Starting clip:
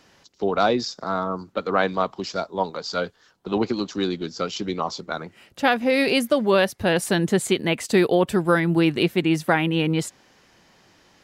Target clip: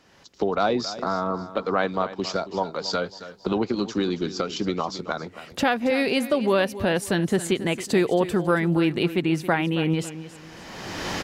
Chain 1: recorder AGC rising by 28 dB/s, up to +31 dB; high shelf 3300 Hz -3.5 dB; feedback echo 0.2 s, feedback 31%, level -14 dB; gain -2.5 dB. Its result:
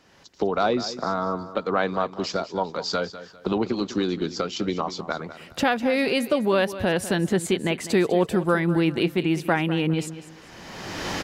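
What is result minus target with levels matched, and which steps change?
echo 74 ms early
change: feedback echo 0.274 s, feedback 31%, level -14 dB

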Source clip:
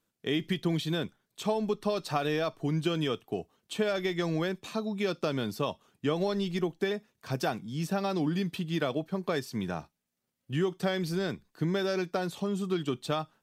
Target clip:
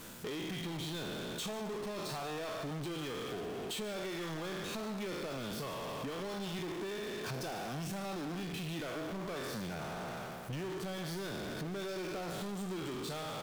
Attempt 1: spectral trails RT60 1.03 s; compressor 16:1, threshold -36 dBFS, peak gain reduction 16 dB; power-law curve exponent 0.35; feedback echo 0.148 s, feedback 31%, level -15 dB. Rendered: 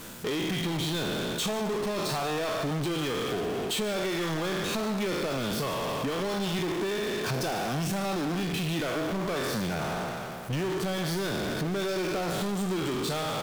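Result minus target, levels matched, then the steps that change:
compressor: peak gain reduction -10.5 dB
change: compressor 16:1, threshold -47 dBFS, peak gain reduction 26 dB

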